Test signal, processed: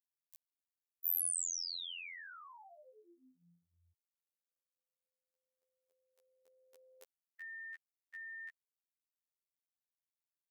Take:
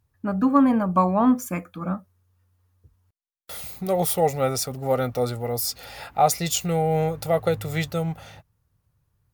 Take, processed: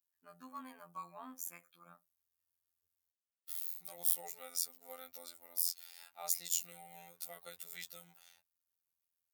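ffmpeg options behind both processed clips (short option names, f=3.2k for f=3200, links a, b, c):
-af "afftfilt=real='hypot(re,im)*cos(PI*b)':imag='0':win_size=2048:overlap=0.75,aderivative,volume=-6dB"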